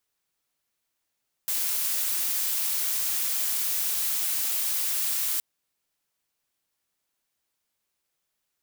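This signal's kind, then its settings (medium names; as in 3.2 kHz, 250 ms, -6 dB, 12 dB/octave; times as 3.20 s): noise blue, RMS -27 dBFS 3.92 s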